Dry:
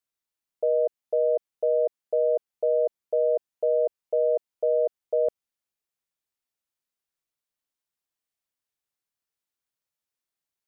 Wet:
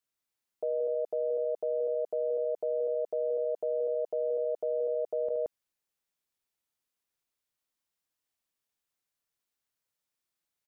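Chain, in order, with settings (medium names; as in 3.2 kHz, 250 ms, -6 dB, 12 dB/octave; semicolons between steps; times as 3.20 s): loudspeakers at several distances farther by 25 m -11 dB, 60 m -5 dB; peak limiter -24.5 dBFS, peak gain reduction 10.5 dB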